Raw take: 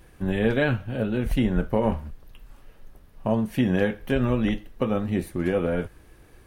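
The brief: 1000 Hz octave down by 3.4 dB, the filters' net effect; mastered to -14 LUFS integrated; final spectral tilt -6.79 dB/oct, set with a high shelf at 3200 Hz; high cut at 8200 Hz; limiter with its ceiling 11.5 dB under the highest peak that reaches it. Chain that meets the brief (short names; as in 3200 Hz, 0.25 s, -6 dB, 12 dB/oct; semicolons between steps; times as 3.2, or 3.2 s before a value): LPF 8200 Hz; bell 1000 Hz -4 dB; high shelf 3200 Hz -5.5 dB; gain +17.5 dB; limiter -4 dBFS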